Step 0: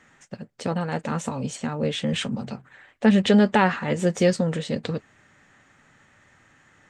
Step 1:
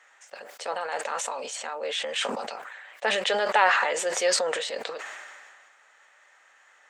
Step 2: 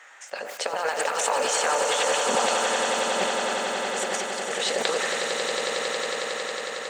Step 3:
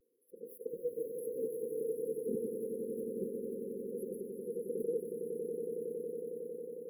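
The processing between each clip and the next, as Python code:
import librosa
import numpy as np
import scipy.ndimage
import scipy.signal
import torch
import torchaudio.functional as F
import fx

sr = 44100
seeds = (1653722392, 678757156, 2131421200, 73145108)

y1 = scipy.signal.sosfilt(scipy.signal.butter(4, 560.0, 'highpass', fs=sr, output='sos'), x)
y1 = fx.sustainer(y1, sr, db_per_s=30.0)
y2 = fx.over_compress(y1, sr, threshold_db=-33.0, ratio=-0.5)
y2 = fx.echo_swell(y2, sr, ms=91, loudest=8, wet_db=-8.5)
y2 = y2 * librosa.db_to_amplitude(3.5)
y3 = fx.brickwall_bandstop(y2, sr, low_hz=510.0, high_hz=10000.0)
y3 = fx.vibrato(y3, sr, rate_hz=0.32, depth_cents=22.0)
y3 = y3 * librosa.db_to_amplitude(-4.5)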